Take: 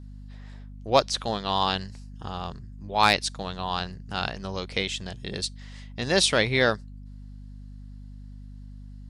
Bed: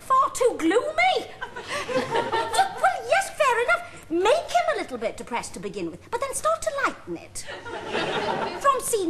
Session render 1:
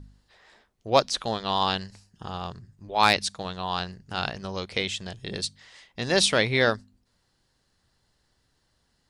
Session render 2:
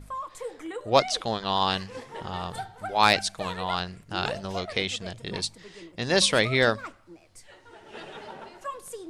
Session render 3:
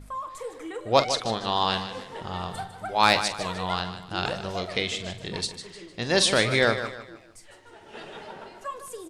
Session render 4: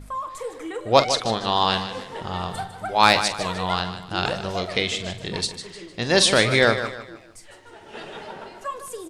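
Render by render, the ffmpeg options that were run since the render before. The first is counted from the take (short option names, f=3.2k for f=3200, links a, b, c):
-af "bandreject=f=50:t=h:w=4,bandreject=f=100:t=h:w=4,bandreject=f=150:t=h:w=4,bandreject=f=200:t=h:w=4,bandreject=f=250:t=h:w=4"
-filter_complex "[1:a]volume=-15.5dB[a];[0:a][a]amix=inputs=2:normalize=0"
-filter_complex "[0:a]asplit=2[a][b];[b]adelay=44,volume=-12.5dB[c];[a][c]amix=inputs=2:normalize=0,asplit=2[d][e];[e]aecho=0:1:152|304|456|608:0.282|0.104|0.0386|0.0143[f];[d][f]amix=inputs=2:normalize=0"
-af "volume=4dB,alimiter=limit=-1dB:level=0:latency=1"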